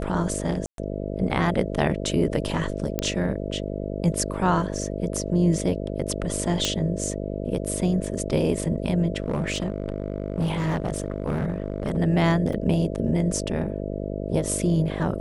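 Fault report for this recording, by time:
buzz 50 Hz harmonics 13 -30 dBFS
0.66–0.78 gap 0.122 s
2.99 pop -9 dBFS
6.65 pop -7 dBFS
9.22–11.98 clipped -20 dBFS
12.53 gap 2.9 ms

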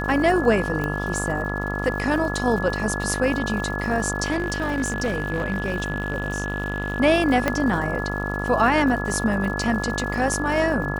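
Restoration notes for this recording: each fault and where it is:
buzz 50 Hz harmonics 28 -28 dBFS
crackle 130/s -32 dBFS
tone 1700 Hz -29 dBFS
0.84 pop -14 dBFS
4.31–7 clipped -19 dBFS
7.48 pop -7 dBFS

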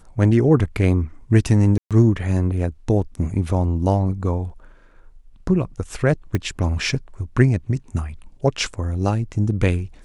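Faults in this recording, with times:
1.78–1.91 gap 0.127 s
6.35 pop -10 dBFS

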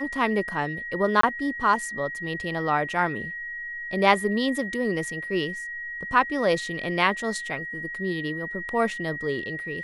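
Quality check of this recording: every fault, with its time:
tone 1900 Hz -32 dBFS
1.21–1.23 gap 24 ms

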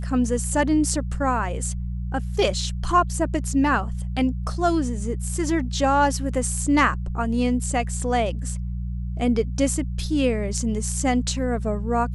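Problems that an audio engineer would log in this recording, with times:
hum 60 Hz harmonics 3 -28 dBFS

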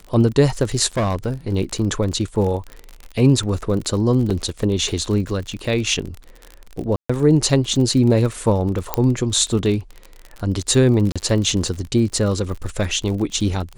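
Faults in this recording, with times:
crackle 47/s -26 dBFS
0.97–1.53 clipped -16 dBFS
4.3–4.31 gap 5.7 ms
6.96–7.09 gap 0.135 s
8.94 pop -4 dBFS
11.12–11.16 gap 36 ms

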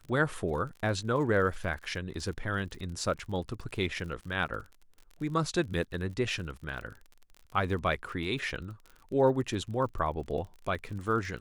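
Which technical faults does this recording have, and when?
crackle 41/s -40 dBFS

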